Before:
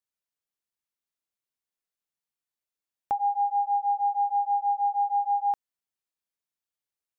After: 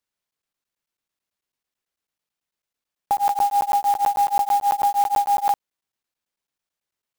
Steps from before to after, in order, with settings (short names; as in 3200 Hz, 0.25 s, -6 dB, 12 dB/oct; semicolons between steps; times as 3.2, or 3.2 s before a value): crackling interface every 0.11 s, samples 512, zero, from 0.31; clock jitter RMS 0.024 ms; gain +6 dB